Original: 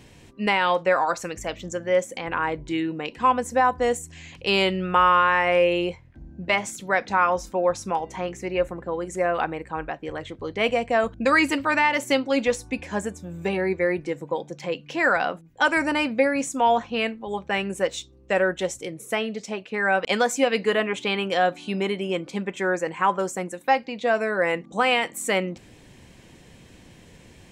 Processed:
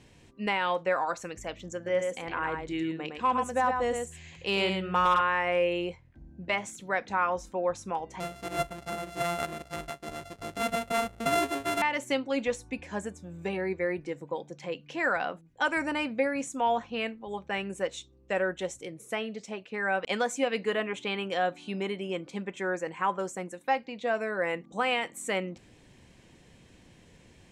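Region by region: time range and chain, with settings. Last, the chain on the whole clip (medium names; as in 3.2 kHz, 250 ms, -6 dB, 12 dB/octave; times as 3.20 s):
1.75–5.21 s: delay 111 ms -5 dB + hard clipper -10.5 dBFS
8.20–11.82 s: sorted samples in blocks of 64 samples + dynamic bell 5.6 kHz, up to -4 dB, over -38 dBFS, Q 0.91
whole clip: low-pass 11 kHz 12 dB/octave; dynamic bell 4.9 kHz, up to -5 dB, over -50 dBFS, Q 4.2; trim -7 dB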